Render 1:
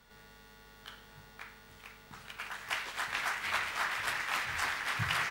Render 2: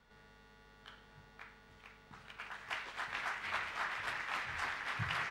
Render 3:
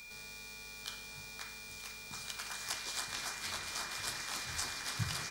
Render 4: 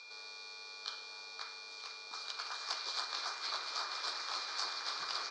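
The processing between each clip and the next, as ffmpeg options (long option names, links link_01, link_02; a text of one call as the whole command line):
ffmpeg -i in.wav -af "aemphasis=mode=reproduction:type=50fm,volume=-4.5dB" out.wav
ffmpeg -i in.wav -filter_complex "[0:a]acrossover=split=440[link_01][link_02];[link_02]acompressor=threshold=-47dB:ratio=6[link_03];[link_01][link_03]amix=inputs=2:normalize=0,aeval=exprs='val(0)+0.00251*sin(2*PI*2400*n/s)':channel_layout=same,aexciter=amount=8.5:drive=7.4:freq=3900,volume=4.5dB" out.wav
ffmpeg -i in.wav -af "highpass=frequency=390:width=0.5412,highpass=frequency=390:width=1.3066,equalizer=frequency=1200:width_type=q:width=4:gain=6,equalizer=frequency=1900:width_type=q:width=4:gain=-8,equalizer=frequency=2900:width_type=q:width=4:gain=-7,equalizer=frequency=4400:width_type=q:width=4:gain=7,lowpass=frequency=5200:width=0.5412,lowpass=frequency=5200:width=1.3066,volume=1dB" out.wav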